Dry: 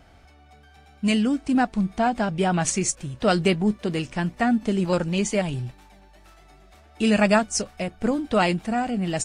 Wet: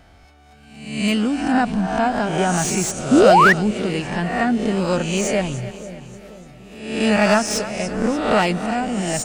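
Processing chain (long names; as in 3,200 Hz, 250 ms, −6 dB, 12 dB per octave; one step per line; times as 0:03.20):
peak hold with a rise ahead of every peak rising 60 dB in 0.80 s
echo with a time of its own for lows and highs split 560 Hz, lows 485 ms, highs 293 ms, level −14 dB
sound drawn into the spectrogram rise, 0:03.11–0:03.53, 230–2,000 Hz −12 dBFS
slew-rate limiting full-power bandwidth 460 Hz
level +1 dB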